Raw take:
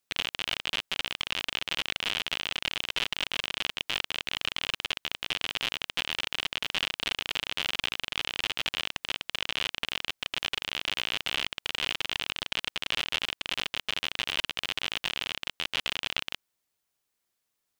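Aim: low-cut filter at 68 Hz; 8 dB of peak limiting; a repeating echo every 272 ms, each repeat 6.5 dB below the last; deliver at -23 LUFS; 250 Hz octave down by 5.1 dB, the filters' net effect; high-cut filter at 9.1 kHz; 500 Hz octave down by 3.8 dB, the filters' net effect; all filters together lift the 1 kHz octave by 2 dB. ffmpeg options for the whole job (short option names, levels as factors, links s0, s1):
-af "highpass=68,lowpass=9100,equalizer=f=250:t=o:g=-5.5,equalizer=f=500:t=o:g=-5,equalizer=f=1000:t=o:g=4,alimiter=limit=0.168:level=0:latency=1,aecho=1:1:272|544|816|1088|1360|1632:0.473|0.222|0.105|0.0491|0.0231|0.0109,volume=2.66"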